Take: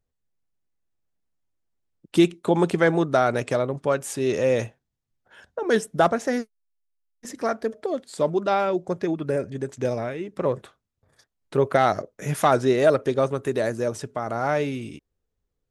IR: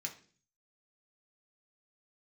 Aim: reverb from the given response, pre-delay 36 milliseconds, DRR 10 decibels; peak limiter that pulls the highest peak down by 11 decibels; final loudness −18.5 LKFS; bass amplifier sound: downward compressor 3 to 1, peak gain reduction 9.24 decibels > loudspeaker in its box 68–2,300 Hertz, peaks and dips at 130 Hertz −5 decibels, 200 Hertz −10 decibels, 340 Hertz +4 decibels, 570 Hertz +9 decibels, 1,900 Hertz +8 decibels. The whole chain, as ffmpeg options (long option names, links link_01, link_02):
-filter_complex "[0:a]alimiter=limit=-17dB:level=0:latency=1,asplit=2[link_01][link_02];[1:a]atrim=start_sample=2205,adelay=36[link_03];[link_02][link_03]afir=irnorm=-1:irlink=0,volume=-9dB[link_04];[link_01][link_04]amix=inputs=2:normalize=0,acompressor=threshold=-32dB:ratio=3,highpass=frequency=68:width=0.5412,highpass=frequency=68:width=1.3066,equalizer=frequency=130:width_type=q:width=4:gain=-5,equalizer=frequency=200:width_type=q:width=4:gain=-10,equalizer=frequency=340:width_type=q:width=4:gain=4,equalizer=frequency=570:width_type=q:width=4:gain=9,equalizer=frequency=1900:width_type=q:width=4:gain=8,lowpass=frequency=2300:width=0.5412,lowpass=frequency=2300:width=1.3066,volume=13dB"